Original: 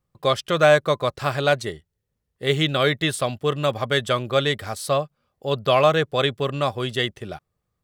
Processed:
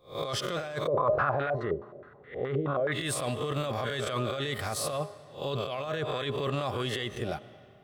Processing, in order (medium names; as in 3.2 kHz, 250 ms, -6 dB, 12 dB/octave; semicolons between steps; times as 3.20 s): reverse spectral sustain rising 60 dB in 0.32 s; de-hum 205.1 Hz, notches 6; compressor with a negative ratio -25 dBFS, ratio -1; peak limiter -17.5 dBFS, peak gain reduction 9 dB; reverberation RT60 2.7 s, pre-delay 70 ms, DRR 17 dB; 0.87–2.92 s: step-sequenced low-pass 9.5 Hz 500–1800 Hz; trim -4.5 dB